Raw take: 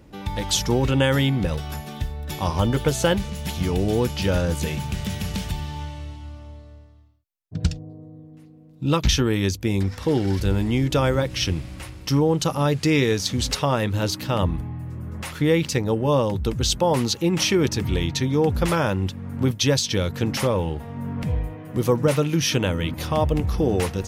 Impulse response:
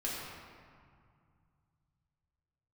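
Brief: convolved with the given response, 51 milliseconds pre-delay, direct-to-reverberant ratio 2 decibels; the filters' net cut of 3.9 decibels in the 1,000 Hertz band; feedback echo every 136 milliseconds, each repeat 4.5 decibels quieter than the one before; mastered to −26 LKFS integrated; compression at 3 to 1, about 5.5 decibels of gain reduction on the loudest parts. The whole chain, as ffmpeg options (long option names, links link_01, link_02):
-filter_complex "[0:a]equalizer=frequency=1000:width_type=o:gain=-5,acompressor=threshold=-22dB:ratio=3,aecho=1:1:136|272|408|544|680|816|952|1088|1224:0.596|0.357|0.214|0.129|0.0772|0.0463|0.0278|0.0167|0.01,asplit=2[link_01][link_02];[1:a]atrim=start_sample=2205,adelay=51[link_03];[link_02][link_03]afir=irnorm=-1:irlink=0,volume=-6dB[link_04];[link_01][link_04]amix=inputs=2:normalize=0,volume=-3.5dB"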